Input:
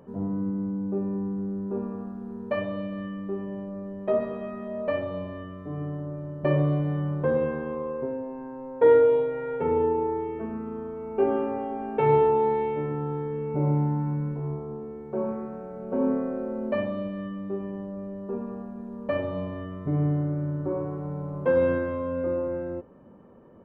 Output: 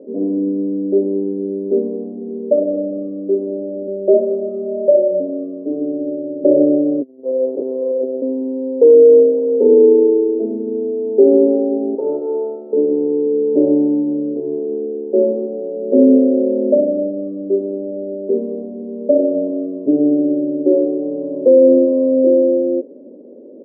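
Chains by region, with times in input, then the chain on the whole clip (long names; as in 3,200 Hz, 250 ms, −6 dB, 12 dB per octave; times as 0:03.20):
0:03.87–0:05.20: parametric band 260 Hz −11.5 dB 0.34 octaves + comb filter 5.4 ms, depth 77%
0:07.01–0:08.22: high-pass filter 59 Hz + one-pitch LPC vocoder at 8 kHz 130 Hz + saturating transformer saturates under 170 Hz
0:11.95–0:12.73: lower of the sound and its delayed copy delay 7.7 ms + tilt shelving filter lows −9.5 dB, about 1,300 Hz
whole clip: elliptic band-pass filter 260–590 Hz, stop band 60 dB; low-shelf EQ 360 Hz +6.5 dB; boost into a limiter +15 dB; level −1 dB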